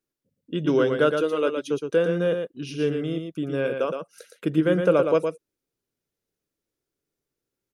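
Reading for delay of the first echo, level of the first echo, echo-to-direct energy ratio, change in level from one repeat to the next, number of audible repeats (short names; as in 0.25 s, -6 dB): 0.116 s, -6.0 dB, -6.0 dB, no steady repeat, 1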